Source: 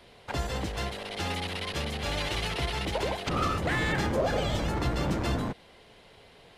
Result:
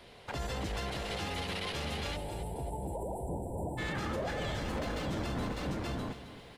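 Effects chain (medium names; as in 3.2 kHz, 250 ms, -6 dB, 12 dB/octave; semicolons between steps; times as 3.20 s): 4.65–5.07 s: comb filter that takes the minimum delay 3.9 ms; delay 603 ms -6.5 dB; peak limiter -28 dBFS, peak gain reduction 11.5 dB; 2.17–3.78 s: spectral selection erased 1–7.3 kHz; bit-crushed delay 268 ms, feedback 35%, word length 11-bit, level -12 dB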